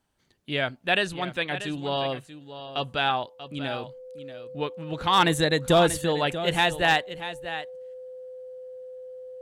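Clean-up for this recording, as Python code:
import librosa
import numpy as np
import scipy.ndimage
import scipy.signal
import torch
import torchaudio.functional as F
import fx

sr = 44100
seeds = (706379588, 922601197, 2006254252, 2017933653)

y = fx.fix_declip(x, sr, threshold_db=-11.0)
y = fx.notch(y, sr, hz=510.0, q=30.0)
y = fx.fix_echo_inverse(y, sr, delay_ms=637, level_db=-12.5)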